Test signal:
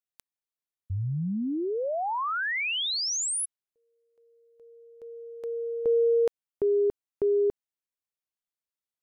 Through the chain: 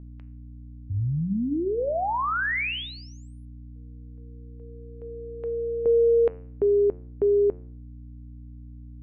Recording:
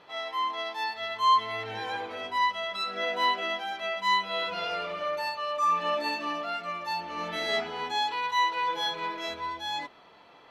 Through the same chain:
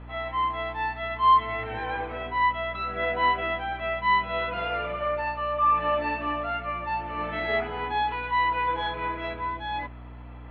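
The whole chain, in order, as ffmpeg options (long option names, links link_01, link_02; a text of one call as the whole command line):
ffmpeg -i in.wav -af "aeval=exprs='val(0)+0.00631*(sin(2*PI*60*n/s)+sin(2*PI*2*60*n/s)/2+sin(2*PI*3*60*n/s)/3+sin(2*PI*4*60*n/s)/4+sin(2*PI*5*60*n/s)/5)':channel_layout=same,lowpass=frequency=2600:width=0.5412,lowpass=frequency=2600:width=1.3066,bandreject=frequency=89.5:width_type=h:width=4,bandreject=frequency=179:width_type=h:width=4,bandreject=frequency=268.5:width_type=h:width=4,bandreject=frequency=358:width_type=h:width=4,bandreject=frequency=447.5:width_type=h:width=4,bandreject=frequency=537:width_type=h:width=4,bandreject=frequency=626.5:width_type=h:width=4,bandreject=frequency=716:width_type=h:width=4,bandreject=frequency=805.5:width_type=h:width=4,bandreject=frequency=895:width_type=h:width=4,bandreject=frequency=984.5:width_type=h:width=4,bandreject=frequency=1074:width_type=h:width=4,bandreject=frequency=1163.5:width_type=h:width=4,bandreject=frequency=1253:width_type=h:width=4,bandreject=frequency=1342.5:width_type=h:width=4,bandreject=frequency=1432:width_type=h:width=4,bandreject=frequency=1521.5:width_type=h:width=4,bandreject=frequency=1611:width_type=h:width=4,bandreject=frequency=1700.5:width_type=h:width=4,bandreject=frequency=1790:width_type=h:width=4,bandreject=frequency=1879.5:width_type=h:width=4,bandreject=frequency=1969:width_type=h:width=4,bandreject=frequency=2058.5:width_type=h:width=4,bandreject=frequency=2148:width_type=h:width=4,bandreject=frequency=2237.5:width_type=h:width=4,bandreject=frequency=2327:width_type=h:width=4,bandreject=frequency=2416.5:width_type=h:width=4,bandreject=frequency=2506:width_type=h:width=4,bandreject=frequency=2595.5:width_type=h:width=4,bandreject=frequency=2685:width_type=h:width=4,bandreject=frequency=2774.5:width_type=h:width=4,bandreject=frequency=2864:width_type=h:width=4,bandreject=frequency=2953.5:width_type=h:width=4,volume=3.5dB" out.wav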